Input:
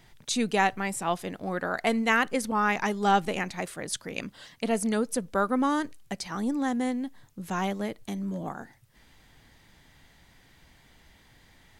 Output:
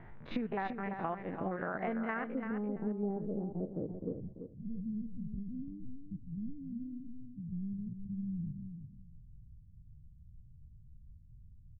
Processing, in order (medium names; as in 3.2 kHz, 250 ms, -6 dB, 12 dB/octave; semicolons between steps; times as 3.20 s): spectrogram pixelated in time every 50 ms; inverse Chebyshev low-pass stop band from 7.9 kHz, stop band 70 dB, from 2.33 s stop band from 2.2 kHz, from 4.12 s stop band from 630 Hz; compression 12:1, threshold -41 dBFS, peak gain reduction 21 dB; feedback delay 339 ms, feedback 18%, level -8 dB; tape noise reduction on one side only decoder only; trim +7.5 dB